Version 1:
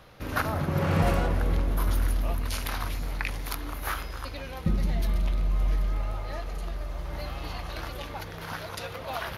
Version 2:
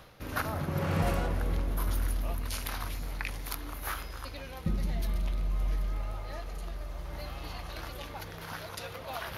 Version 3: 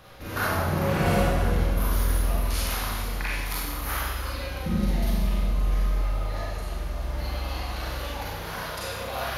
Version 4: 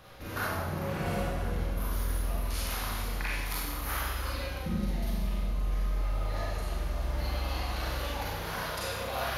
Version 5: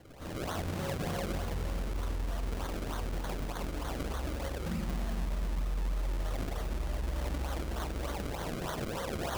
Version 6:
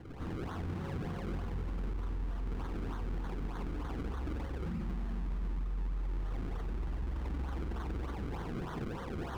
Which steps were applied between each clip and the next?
high-shelf EQ 5,800 Hz +4.5 dB; reversed playback; upward compression, threshold −33 dBFS; reversed playback; level −5 dB
four-comb reverb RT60 1.2 s, combs from 31 ms, DRR −7.5 dB
speech leveller within 4 dB 0.5 s; level −5.5 dB
mains-hum notches 50/100/150/200 Hz; brickwall limiter −26 dBFS, peak gain reduction 7 dB; sample-and-hold swept by an LFO 34×, swing 100% 3.3 Hz
brickwall limiter −38 dBFS, peak gain reduction 12 dB; low-pass filter 1,100 Hz 6 dB per octave; parametric band 600 Hz −12.5 dB 0.44 octaves; level +7.5 dB

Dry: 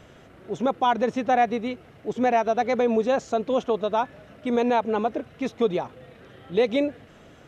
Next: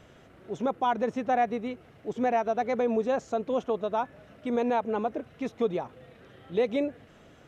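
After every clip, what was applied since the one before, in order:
dynamic equaliser 4,100 Hz, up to −5 dB, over −45 dBFS, Q 0.87
level −4.5 dB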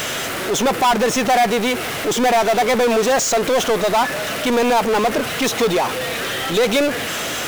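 spectral tilt +4 dB per octave
power curve on the samples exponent 0.35
level +6 dB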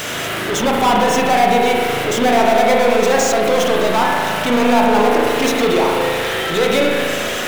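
spring reverb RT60 2.2 s, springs 37 ms, chirp 45 ms, DRR −2.5 dB
level −1.5 dB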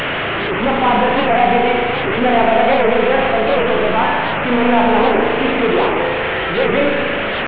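linear delta modulator 16 kbit/s, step −13 dBFS
wow of a warped record 78 rpm, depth 160 cents

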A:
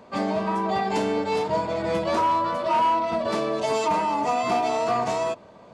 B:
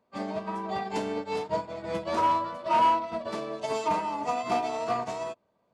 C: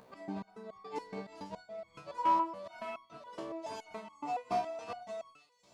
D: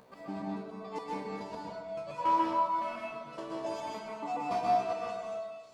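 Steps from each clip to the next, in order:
expander for the loud parts 2.5 to 1, over −35 dBFS
upward compression, threshold −33 dBFS; delay with a high-pass on its return 500 ms, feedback 58%, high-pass 3,400 Hz, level −12 dB; step-sequenced resonator 7.1 Hz 65–1,100 Hz
convolution reverb RT60 1.1 s, pre-delay 117 ms, DRR −3 dB

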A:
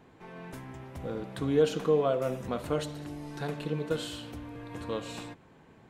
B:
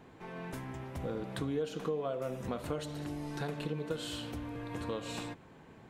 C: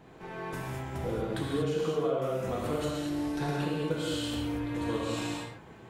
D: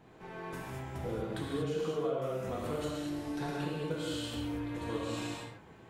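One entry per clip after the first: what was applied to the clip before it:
downward compressor 4 to 1, threshold −35 dBFS, peak gain reduction 13.5 dB; level +1.5 dB
reverb whose tail is shaped and stops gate 260 ms flat, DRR −4.5 dB
flanger 0.93 Hz, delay 8.4 ms, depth 3.8 ms, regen −68%

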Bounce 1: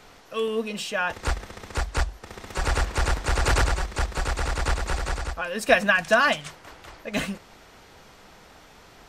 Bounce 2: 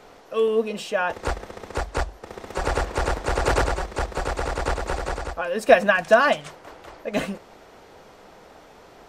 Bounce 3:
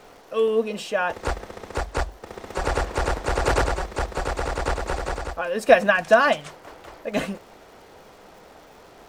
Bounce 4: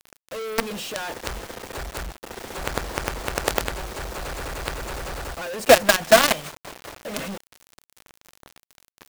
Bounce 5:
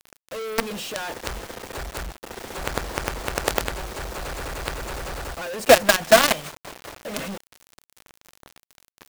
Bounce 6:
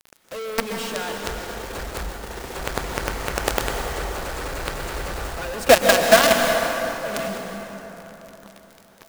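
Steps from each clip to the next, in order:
parametric band 510 Hz +10 dB 2.3 octaves; level −3.5 dB
surface crackle 360 per second −46 dBFS
log-companded quantiser 2 bits; level −5.5 dB
no processing that can be heard
dense smooth reverb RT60 4 s, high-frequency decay 0.55×, pre-delay 110 ms, DRR 2.5 dB

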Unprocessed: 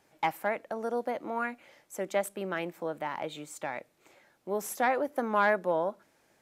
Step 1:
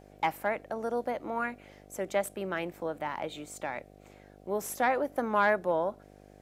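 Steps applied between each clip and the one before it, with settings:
hum with harmonics 50 Hz, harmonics 15, −55 dBFS −1 dB per octave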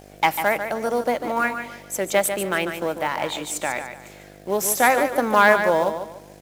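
high-shelf EQ 2,100 Hz +9 dB
in parallel at −10 dB: log-companded quantiser 4 bits
on the sum: repeating echo 146 ms, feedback 30%, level −8.5 dB
level +5.5 dB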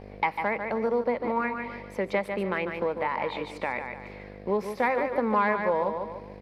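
EQ curve with evenly spaced ripples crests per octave 0.9, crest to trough 8 dB
downward compressor 2 to 1, threshold −29 dBFS, peak gain reduction 11 dB
high-frequency loss of the air 340 metres
level +2 dB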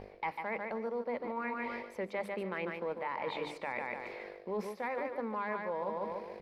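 mains-hum notches 50/100/150/200/250/300 Hz
reversed playback
downward compressor 6 to 1, threshold −34 dBFS, peak gain reduction 14 dB
reversed playback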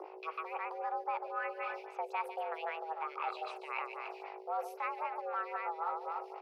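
mains hum 60 Hz, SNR 13 dB
frequency shifter +320 Hz
phaser with staggered stages 3.8 Hz
level +1 dB

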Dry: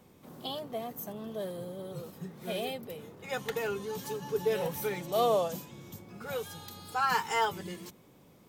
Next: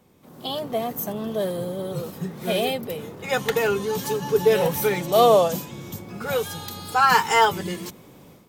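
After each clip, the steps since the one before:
automatic gain control gain up to 11.5 dB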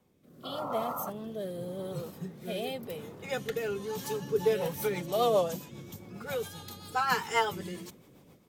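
sound drawn into the spectrogram noise, 0:00.43–0:01.10, 500–1,400 Hz −28 dBFS
rotating-speaker cabinet horn 0.9 Hz, later 7.5 Hz, at 0:03.99
level −7.5 dB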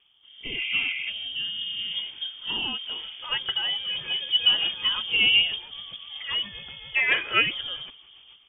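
voice inversion scrambler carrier 3,400 Hz
level +5.5 dB

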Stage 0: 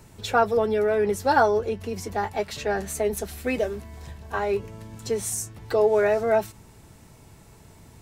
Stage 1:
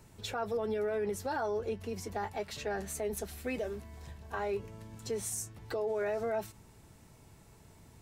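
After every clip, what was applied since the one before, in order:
brickwall limiter −19 dBFS, peak gain reduction 11 dB
level −7.5 dB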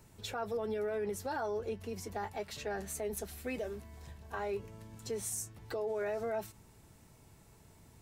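high-shelf EQ 10,000 Hz +4 dB
level −2.5 dB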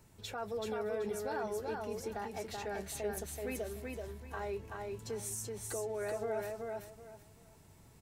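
repeating echo 381 ms, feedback 24%, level −3 dB
level −2.5 dB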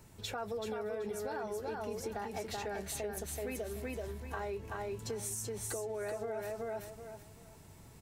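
downward compressor, threshold −40 dBFS, peak gain reduction 8.5 dB
level +4.5 dB

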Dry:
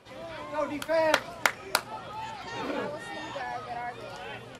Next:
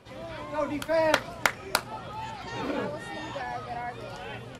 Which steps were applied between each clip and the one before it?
low-shelf EQ 230 Hz +7.5 dB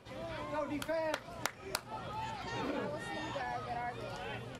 downward compressor 5 to 1, threshold −30 dBFS, peak gain reduction 13 dB
level −3.5 dB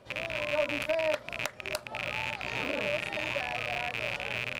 loose part that buzzes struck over −49 dBFS, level −20 dBFS
parametric band 600 Hz +12 dB 0.2 octaves

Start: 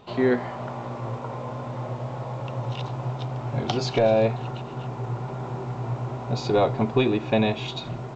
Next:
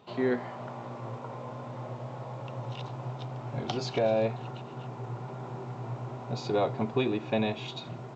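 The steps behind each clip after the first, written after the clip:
high-pass filter 98 Hz
level −6.5 dB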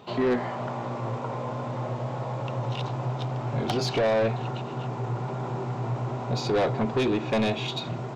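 soft clipping −28 dBFS, distortion −9 dB
level +8.5 dB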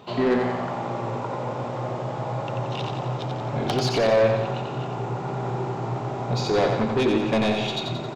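repeating echo 89 ms, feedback 55%, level −5 dB
level +2 dB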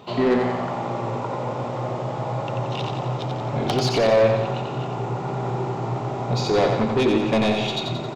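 parametric band 1,600 Hz −4 dB 0.2 octaves
level +2 dB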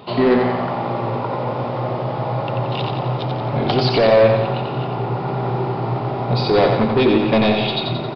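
downsampling to 11,025 Hz
level +4.5 dB

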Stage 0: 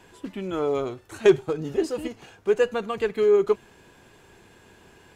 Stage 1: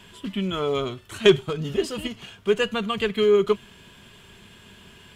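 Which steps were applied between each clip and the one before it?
thirty-one-band graphic EQ 200 Hz +5 dB, 315 Hz −11 dB, 500 Hz −9 dB, 800 Hz −11 dB, 1,600 Hz −3 dB, 3,150 Hz +10 dB, 6,300 Hz −3 dB
level +5 dB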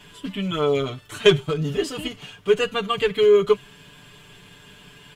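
comb filter 6.8 ms, depth 97%
level −1 dB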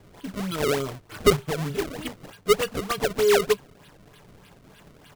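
sample-and-hold swept by an LFO 30×, swing 160% 3.3 Hz
level −4 dB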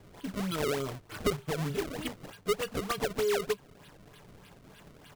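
downward compressor 3 to 1, threshold −26 dBFS, peak gain reduction 10.5 dB
level −2.5 dB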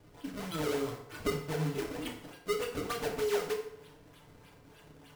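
feedback delay network reverb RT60 0.76 s, low-frequency decay 0.75×, high-frequency decay 0.75×, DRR −0.5 dB
level −6 dB

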